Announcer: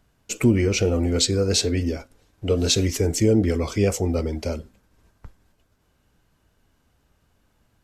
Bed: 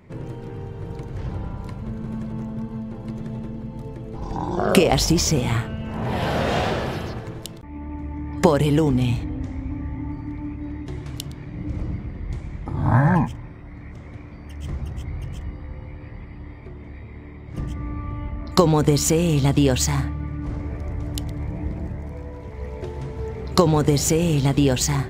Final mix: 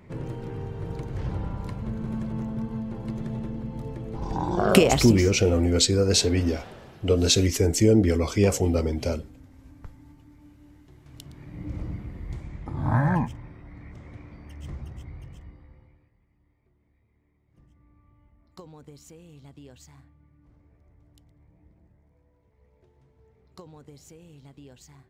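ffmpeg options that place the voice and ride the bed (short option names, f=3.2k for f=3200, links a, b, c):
-filter_complex "[0:a]adelay=4600,volume=0dB[a];[1:a]volume=14.5dB,afade=t=out:st=4.81:d=0.48:silence=0.1,afade=t=in:st=11.01:d=0.66:silence=0.16788,afade=t=out:st=14.31:d=1.8:silence=0.0595662[b];[a][b]amix=inputs=2:normalize=0"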